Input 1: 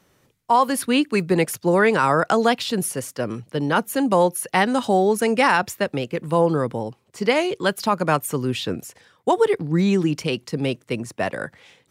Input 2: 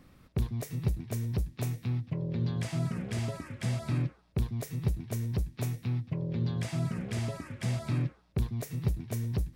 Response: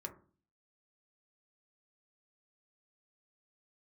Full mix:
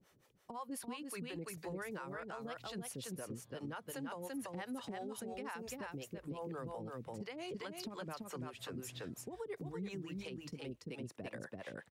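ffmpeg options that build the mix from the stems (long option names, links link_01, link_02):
-filter_complex "[0:a]acompressor=threshold=-23dB:ratio=6,acrossover=split=440[link_01][link_02];[link_01]aeval=exprs='val(0)*(1-1/2+1/2*cos(2*PI*5.7*n/s))':channel_layout=same[link_03];[link_02]aeval=exprs='val(0)*(1-1/2-1/2*cos(2*PI*5.7*n/s))':channel_layout=same[link_04];[link_03][link_04]amix=inputs=2:normalize=0,adynamicequalizer=threshold=0.00251:dfrequency=6900:dqfactor=0.7:tfrequency=6900:tqfactor=0.7:attack=5:release=100:ratio=0.375:range=2:mode=cutabove:tftype=highshelf,volume=-5dB,asplit=3[link_05][link_06][link_07];[link_06]volume=-4dB[link_08];[1:a]equalizer=frequency=190:width_type=o:width=1.8:gain=-8,adelay=950,volume=-17dB,asplit=2[link_09][link_10];[link_10]volume=-10dB[link_11];[link_07]apad=whole_len=463276[link_12];[link_09][link_12]sidechaincompress=threshold=-49dB:ratio=8:attack=16:release=180[link_13];[link_08][link_11]amix=inputs=2:normalize=0,aecho=0:1:337:1[link_14];[link_05][link_13][link_14]amix=inputs=3:normalize=0,alimiter=level_in=11.5dB:limit=-24dB:level=0:latency=1:release=285,volume=-11.5dB"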